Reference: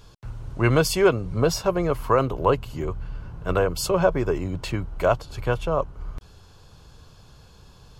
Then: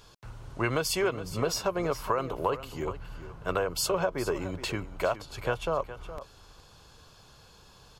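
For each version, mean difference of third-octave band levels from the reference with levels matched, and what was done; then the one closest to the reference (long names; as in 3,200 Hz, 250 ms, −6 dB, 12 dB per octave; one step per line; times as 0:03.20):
5.5 dB: low-shelf EQ 300 Hz −10 dB
downward compressor 6 to 1, threshold −24 dBFS, peak gain reduction 9 dB
on a send: single-tap delay 416 ms −13.5 dB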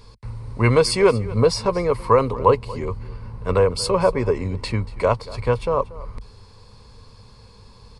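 3.5 dB: EQ curve with evenly spaced ripples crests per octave 0.92, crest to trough 10 dB
single-tap delay 234 ms −19 dB
downsampling to 22,050 Hz
level +1.5 dB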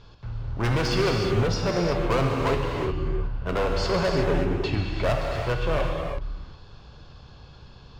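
8.5 dB: low-pass filter 4,800 Hz 24 dB per octave
hard clipping −22 dBFS, distortion −6 dB
reverb whose tail is shaped and stops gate 390 ms flat, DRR 0 dB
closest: second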